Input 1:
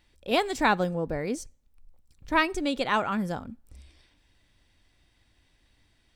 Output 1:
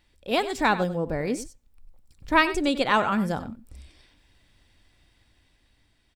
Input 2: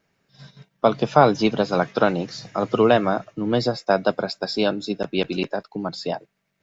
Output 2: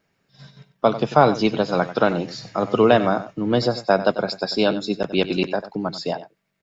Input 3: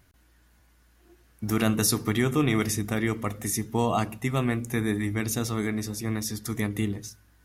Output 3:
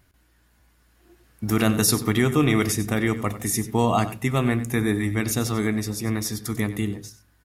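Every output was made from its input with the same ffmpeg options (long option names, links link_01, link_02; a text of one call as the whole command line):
ffmpeg -i in.wav -af "bandreject=frequency=6100:width=19,aecho=1:1:94:0.2,dynaudnorm=framelen=190:gausssize=11:maxgain=4dB" out.wav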